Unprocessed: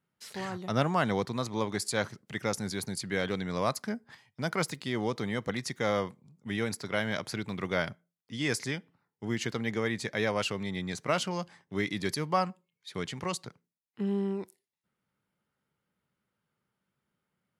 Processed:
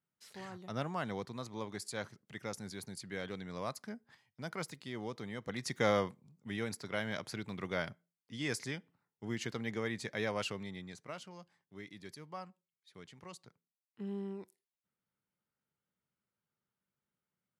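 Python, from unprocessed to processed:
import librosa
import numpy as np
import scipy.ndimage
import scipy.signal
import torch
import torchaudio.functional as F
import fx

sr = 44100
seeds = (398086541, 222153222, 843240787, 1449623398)

y = fx.gain(x, sr, db=fx.line((5.41, -10.5), (5.8, 0.0), (6.51, -6.5), (10.51, -6.5), (11.19, -18.0), (13.16, -18.0), (14.09, -10.0)))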